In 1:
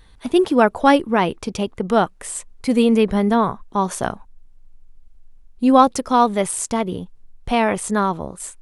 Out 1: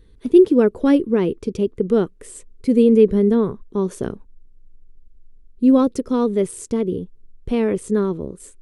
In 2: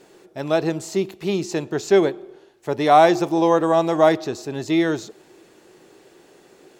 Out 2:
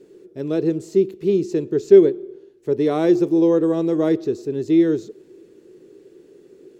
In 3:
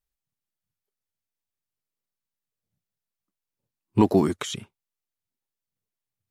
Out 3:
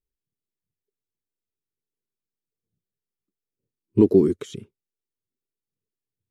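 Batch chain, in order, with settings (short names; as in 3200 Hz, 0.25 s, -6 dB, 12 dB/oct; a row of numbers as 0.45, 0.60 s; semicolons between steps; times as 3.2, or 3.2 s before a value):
resonant low shelf 560 Hz +9.5 dB, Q 3; gain -10 dB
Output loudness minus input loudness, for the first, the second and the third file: +0.5, +1.0, +4.0 LU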